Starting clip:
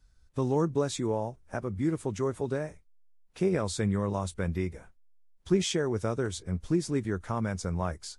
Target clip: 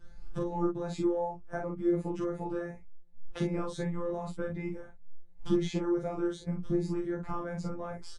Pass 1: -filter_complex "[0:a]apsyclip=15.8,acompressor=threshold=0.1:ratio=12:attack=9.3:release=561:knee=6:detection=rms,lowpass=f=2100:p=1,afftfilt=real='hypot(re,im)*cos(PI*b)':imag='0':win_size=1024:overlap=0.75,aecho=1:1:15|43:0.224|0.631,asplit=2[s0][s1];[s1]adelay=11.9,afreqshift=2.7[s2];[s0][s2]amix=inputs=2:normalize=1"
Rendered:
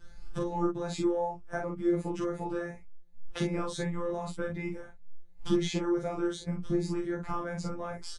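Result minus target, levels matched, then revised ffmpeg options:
2 kHz band +3.5 dB
-filter_complex "[0:a]apsyclip=15.8,acompressor=threshold=0.1:ratio=12:attack=9.3:release=561:knee=6:detection=rms,lowpass=f=900:p=1,afftfilt=real='hypot(re,im)*cos(PI*b)':imag='0':win_size=1024:overlap=0.75,aecho=1:1:15|43:0.224|0.631,asplit=2[s0][s1];[s1]adelay=11.9,afreqshift=2.7[s2];[s0][s2]amix=inputs=2:normalize=1"

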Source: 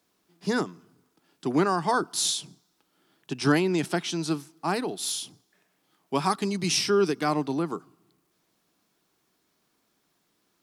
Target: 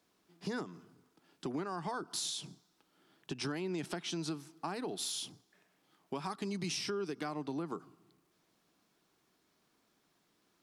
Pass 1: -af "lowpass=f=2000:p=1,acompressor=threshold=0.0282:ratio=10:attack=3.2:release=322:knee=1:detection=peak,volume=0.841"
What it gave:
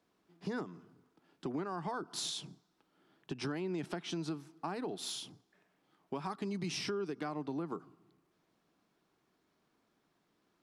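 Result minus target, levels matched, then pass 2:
8 kHz band -3.5 dB
-af "lowpass=f=7200:p=1,acompressor=threshold=0.0282:ratio=10:attack=3.2:release=322:knee=1:detection=peak,volume=0.841"

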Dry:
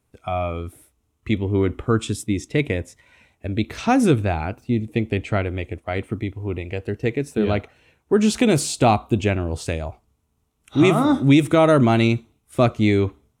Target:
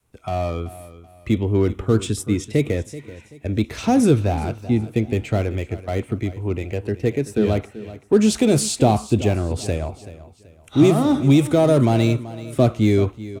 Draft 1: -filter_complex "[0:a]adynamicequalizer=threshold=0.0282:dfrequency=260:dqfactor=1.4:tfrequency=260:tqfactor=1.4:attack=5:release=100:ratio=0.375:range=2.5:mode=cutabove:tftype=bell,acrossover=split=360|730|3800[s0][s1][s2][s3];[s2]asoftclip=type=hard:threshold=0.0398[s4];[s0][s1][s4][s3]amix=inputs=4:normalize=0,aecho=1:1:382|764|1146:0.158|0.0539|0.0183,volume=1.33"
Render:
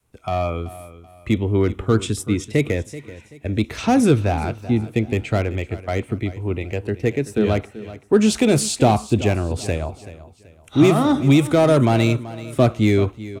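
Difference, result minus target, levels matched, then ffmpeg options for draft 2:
hard clipper: distortion -5 dB
-filter_complex "[0:a]adynamicequalizer=threshold=0.0282:dfrequency=260:dqfactor=1.4:tfrequency=260:tqfactor=1.4:attack=5:release=100:ratio=0.375:range=2.5:mode=cutabove:tftype=bell,acrossover=split=360|730|3800[s0][s1][s2][s3];[s2]asoftclip=type=hard:threshold=0.0141[s4];[s0][s1][s4][s3]amix=inputs=4:normalize=0,aecho=1:1:382|764|1146:0.158|0.0539|0.0183,volume=1.33"

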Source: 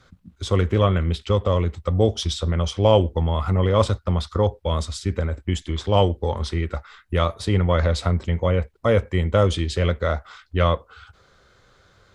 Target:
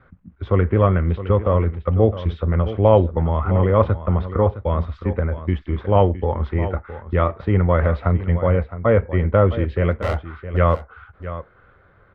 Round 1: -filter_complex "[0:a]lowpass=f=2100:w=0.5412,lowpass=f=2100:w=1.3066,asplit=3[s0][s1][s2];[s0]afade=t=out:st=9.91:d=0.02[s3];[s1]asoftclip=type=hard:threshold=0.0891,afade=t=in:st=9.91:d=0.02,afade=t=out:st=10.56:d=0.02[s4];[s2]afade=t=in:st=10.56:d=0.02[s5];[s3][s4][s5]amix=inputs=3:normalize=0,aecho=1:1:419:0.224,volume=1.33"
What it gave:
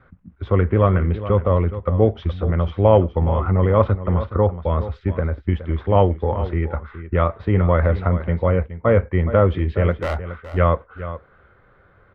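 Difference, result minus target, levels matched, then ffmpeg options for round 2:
echo 244 ms early
-filter_complex "[0:a]lowpass=f=2100:w=0.5412,lowpass=f=2100:w=1.3066,asplit=3[s0][s1][s2];[s0]afade=t=out:st=9.91:d=0.02[s3];[s1]asoftclip=type=hard:threshold=0.0891,afade=t=in:st=9.91:d=0.02,afade=t=out:st=10.56:d=0.02[s4];[s2]afade=t=in:st=10.56:d=0.02[s5];[s3][s4][s5]amix=inputs=3:normalize=0,aecho=1:1:663:0.224,volume=1.33"

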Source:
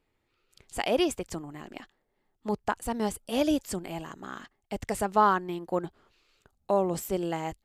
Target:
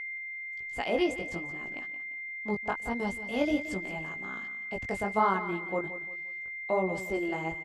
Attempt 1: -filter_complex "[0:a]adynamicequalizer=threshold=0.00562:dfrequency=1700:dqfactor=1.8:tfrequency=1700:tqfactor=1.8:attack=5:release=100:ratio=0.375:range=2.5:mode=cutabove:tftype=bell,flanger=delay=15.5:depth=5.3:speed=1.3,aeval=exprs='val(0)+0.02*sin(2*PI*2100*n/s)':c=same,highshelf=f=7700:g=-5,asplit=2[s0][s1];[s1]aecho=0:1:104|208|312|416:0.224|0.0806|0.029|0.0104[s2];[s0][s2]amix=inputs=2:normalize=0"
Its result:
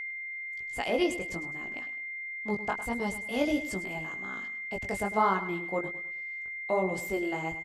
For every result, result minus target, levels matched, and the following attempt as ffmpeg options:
echo 70 ms early; 8 kHz band +5.5 dB
-filter_complex "[0:a]adynamicequalizer=threshold=0.00562:dfrequency=1700:dqfactor=1.8:tfrequency=1700:tqfactor=1.8:attack=5:release=100:ratio=0.375:range=2.5:mode=cutabove:tftype=bell,flanger=delay=15.5:depth=5.3:speed=1.3,aeval=exprs='val(0)+0.02*sin(2*PI*2100*n/s)':c=same,highshelf=f=7700:g=-5,asplit=2[s0][s1];[s1]aecho=0:1:174|348|522|696:0.224|0.0806|0.029|0.0104[s2];[s0][s2]amix=inputs=2:normalize=0"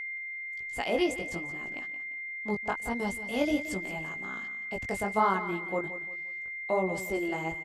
8 kHz band +5.5 dB
-filter_complex "[0:a]adynamicequalizer=threshold=0.00562:dfrequency=1700:dqfactor=1.8:tfrequency=1700:tqfactor=1.8:attack=5:release=100:ratio=0.375:range=2.5:mode=cutabove:tftype=bell,flanger=delay=15.5:depth=5.3:speed=1.3,aeval=exprs='val(0)+0.02*sin(2*PI*2100*n/s)':c=same,highshelf=f=7700:g=-17,asplit=2[s0][s1];[s1]aecho=0:1:174|348|522|696:0.224|0.0806|0.029|0.0104[s2];[s0][s2]amix=inputs=2:normalize=0"

